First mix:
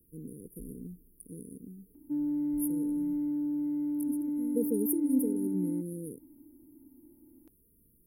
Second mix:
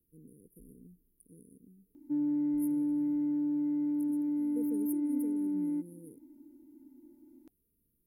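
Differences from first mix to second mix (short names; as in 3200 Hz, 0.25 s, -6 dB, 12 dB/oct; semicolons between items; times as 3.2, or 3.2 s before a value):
speech -11.5 dB; background: remove air absorption 400 m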